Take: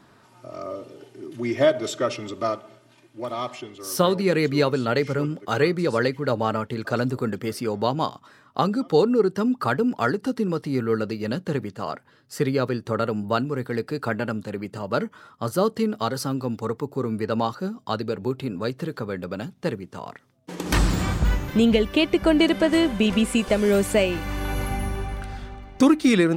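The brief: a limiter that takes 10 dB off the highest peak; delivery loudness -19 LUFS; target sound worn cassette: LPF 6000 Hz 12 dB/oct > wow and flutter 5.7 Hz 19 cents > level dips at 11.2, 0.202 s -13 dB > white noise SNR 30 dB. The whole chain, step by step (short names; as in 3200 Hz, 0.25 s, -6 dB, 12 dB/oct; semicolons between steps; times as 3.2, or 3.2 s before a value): limiter -14.5 dBFS; LPF 6000 Hz 12 dB/oct; wow and flutter 5.7 Hz 19 cents; level dips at 11.2, 0.202 s -13 dB; white noise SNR 30 dB; gain +8 dB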